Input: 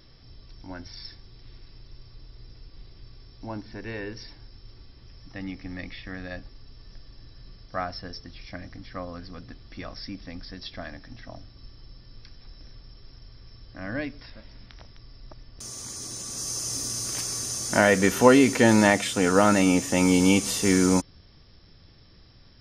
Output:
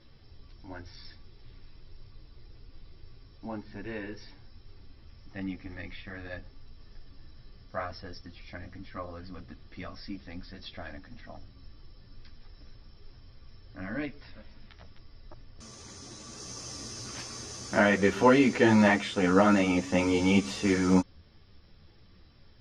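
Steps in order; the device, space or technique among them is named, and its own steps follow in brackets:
string-machine ensemble chorus (string-ensemble chorus; low-pass filter 4,000 Hz 12 dB per octave)

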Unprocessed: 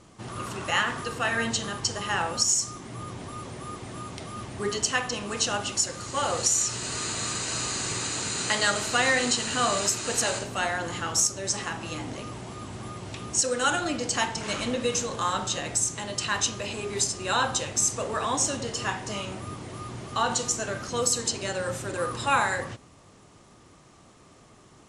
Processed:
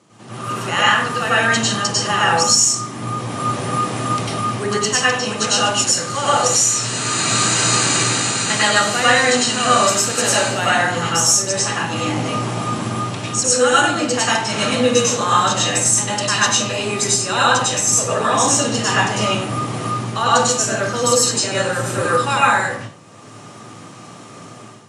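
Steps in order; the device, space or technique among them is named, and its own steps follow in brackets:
far laptop microphone (convolution reverb RT60 0.40 s, pre-delay 92 ms, DRR −6.5 dB; high-pass filter 130 Hz 24 dB per octave; automatic gain control gain up to 10.5 dB)
level −1 dB

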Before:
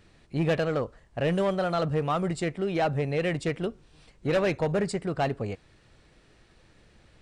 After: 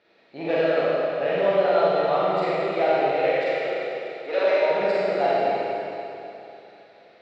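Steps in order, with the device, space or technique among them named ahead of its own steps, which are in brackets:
0:03.11–0:04.70: high-pass filter 400 Hz 12 dB per octave
phone earpiece (loudspeaker in its box 490–3,900 Hz, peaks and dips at 630 Hz +4 dB, 1,100 Hz −7 dB, 1,700 Hz −5 dB, 3,000 Hz −7 dB)
four-comb reverb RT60 3.1 s, combs from 33 ms, DRR −9 dB

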